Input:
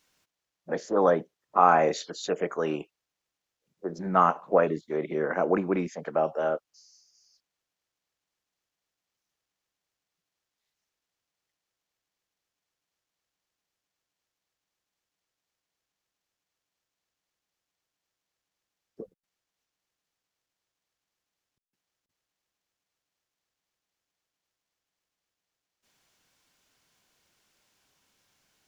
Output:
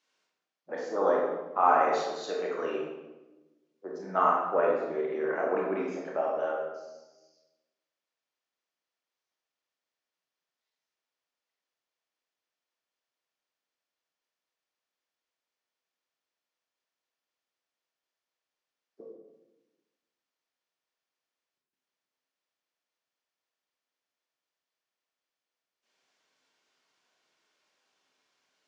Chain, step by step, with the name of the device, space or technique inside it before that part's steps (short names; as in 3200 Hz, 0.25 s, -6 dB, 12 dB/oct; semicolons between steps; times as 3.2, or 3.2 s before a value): supermarket ceiling speaker (BPF 310–5700 Hz; reverb RT60 1.1 s, pre-delay 20 ms, DRR -3 dB); gain -7 dB